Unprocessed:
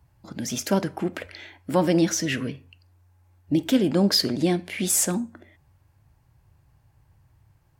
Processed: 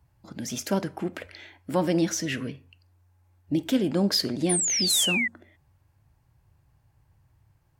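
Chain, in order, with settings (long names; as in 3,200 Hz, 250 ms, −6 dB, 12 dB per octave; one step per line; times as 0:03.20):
sound drawn into the spectrogram fall, 0:04.49–0:05.28, 1,900–10,000 Hz −22 dBFS
level −3.5 dB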